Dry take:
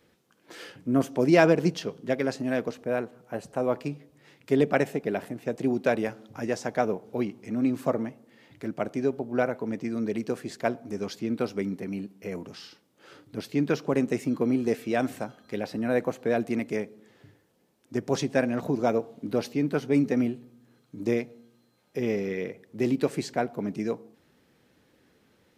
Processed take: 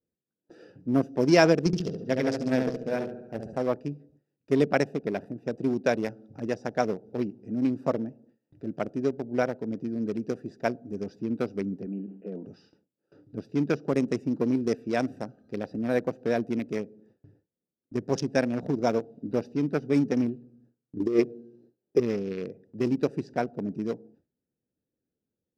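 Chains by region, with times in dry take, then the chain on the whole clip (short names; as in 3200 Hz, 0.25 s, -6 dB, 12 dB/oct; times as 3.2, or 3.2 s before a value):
1.66–3.58 low shelf 73 Hz +10.5 dB + notches 60/120/180/240/300/360/420/480/540/600 Hz + flutter echo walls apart 12 m, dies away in 0.92 s
11.86–12.46 brick-wall FIR band-pass 160–3100 Hz + dynamic EQ 2200 Hz, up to -4 dB, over -55 dBFS, Q 2.8 + sustainer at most 88 dB/s
20.96–22 bell 370 Hz +14 dB 0.52 oct + notch 1200 Hz, Q 8.9 + negative-ratio compressor -19 dBFS, ratio -0.5
whole clip: Wiener smoothing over 41 samples; bell 5300 Hz +11.5 dB 0.44 oct; gate with hold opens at -49 dBFS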